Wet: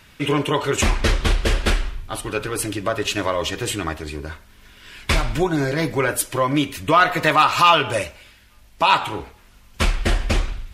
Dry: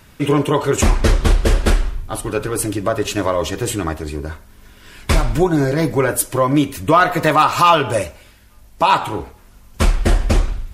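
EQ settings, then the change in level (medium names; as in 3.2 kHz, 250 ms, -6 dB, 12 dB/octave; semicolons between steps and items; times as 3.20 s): peaking EQ 2.8 kHz +8.5 dB 2.1 oct; -5.5 dB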